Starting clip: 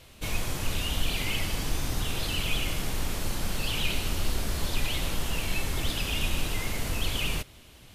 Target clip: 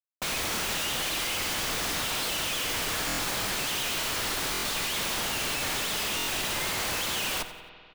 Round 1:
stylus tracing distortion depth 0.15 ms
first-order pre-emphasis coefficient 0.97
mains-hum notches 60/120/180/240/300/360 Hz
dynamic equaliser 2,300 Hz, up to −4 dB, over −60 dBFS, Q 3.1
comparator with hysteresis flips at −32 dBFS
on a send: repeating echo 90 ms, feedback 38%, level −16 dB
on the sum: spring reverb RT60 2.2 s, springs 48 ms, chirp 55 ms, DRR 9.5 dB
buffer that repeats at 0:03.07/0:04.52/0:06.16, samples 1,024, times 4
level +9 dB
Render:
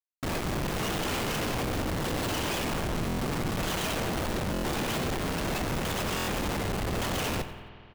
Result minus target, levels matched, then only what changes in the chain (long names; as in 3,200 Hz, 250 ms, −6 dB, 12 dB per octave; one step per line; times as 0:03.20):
comparator with hysteresis: distortion +13 dB
change: comparator with hysteresis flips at −41 dBFS